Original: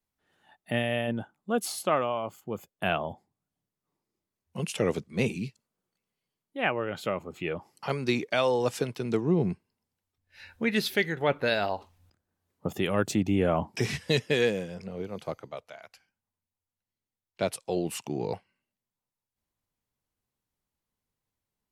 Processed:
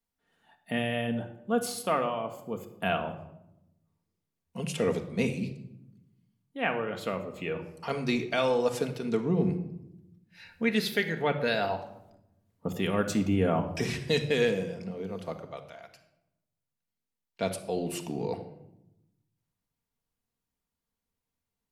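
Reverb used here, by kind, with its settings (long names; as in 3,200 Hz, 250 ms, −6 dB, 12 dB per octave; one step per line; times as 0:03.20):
rectangular room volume 2,800 cubic metres, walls furnished, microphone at 1.7 metres
level −2.5 dB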